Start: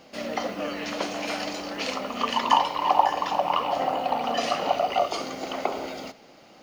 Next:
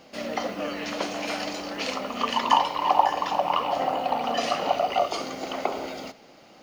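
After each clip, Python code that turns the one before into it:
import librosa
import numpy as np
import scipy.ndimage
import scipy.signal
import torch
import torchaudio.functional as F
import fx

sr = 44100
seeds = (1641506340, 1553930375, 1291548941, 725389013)

y = x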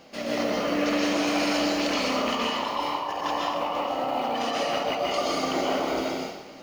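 y = fx.over_compress(x, sr, threshold_db=-30.0, ratio=-1.0)
y = fx.rev_plate(y, sr, seeds[0], rt60_s=0.99, hf_ratio=0.85, predelay_ms=110, drr_db=-4.0)
y = y * librosa.db_to_amplitude(-3.0)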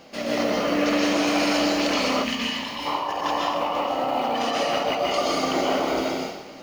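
y = fx.spec_box(x, sr, start_s=2.24, length_s=0.62, low_hz=280.0, high_hz=1500.0, gain_db=-10)
y = y * librosa.db_to_amplitude(3.0)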